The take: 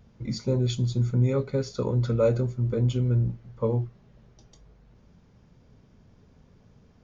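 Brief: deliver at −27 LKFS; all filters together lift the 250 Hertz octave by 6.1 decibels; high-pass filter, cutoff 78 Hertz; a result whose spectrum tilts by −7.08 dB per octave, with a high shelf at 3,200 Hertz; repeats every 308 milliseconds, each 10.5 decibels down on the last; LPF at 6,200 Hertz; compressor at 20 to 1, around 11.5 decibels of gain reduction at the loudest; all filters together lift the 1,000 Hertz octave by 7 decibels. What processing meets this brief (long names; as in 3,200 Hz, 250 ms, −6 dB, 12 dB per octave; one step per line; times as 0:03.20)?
high-pass filter 78 Hz
low-pass filter 6,200 Hz
parametric band 250 Hz +7 dB
parametric band 1,000 Hz +7.5 dB
high-shelf EQ 3,200 Hz +4.5 dB
downward compressor 20 to 1, threshold −26 dBFS
repeating echo 308 ms, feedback 30%, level −10.5 dB
level +5 dB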